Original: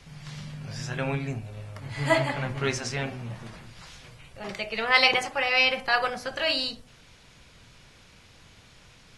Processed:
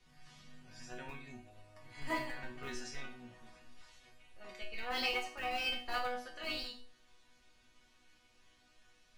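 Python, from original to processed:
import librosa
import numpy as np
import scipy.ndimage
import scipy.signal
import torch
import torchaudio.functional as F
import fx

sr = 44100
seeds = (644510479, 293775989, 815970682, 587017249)

p1 = fx.schmitt(x, sr, flips_db=-20.5)
p2 = x + (p1 * librosa.db_to_amplitude(-3.0))
p3 = fx.resonator_bank(p2, sr, root=59, chord='major', decay_s=0.38)
y = p3 * librosa.db_to_amplitude(5.0)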